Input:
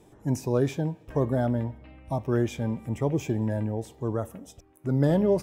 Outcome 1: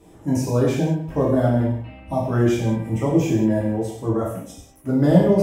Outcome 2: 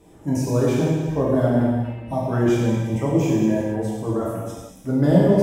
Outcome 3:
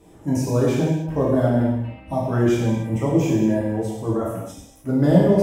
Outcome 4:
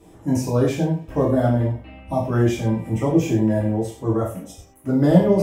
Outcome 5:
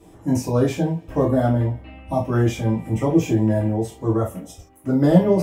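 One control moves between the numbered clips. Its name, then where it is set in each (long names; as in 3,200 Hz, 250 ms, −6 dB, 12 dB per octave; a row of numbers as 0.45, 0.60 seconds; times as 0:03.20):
reverb whose tail is shaped and stops, gate: 230, 510, 340, 150, 100 milliseconds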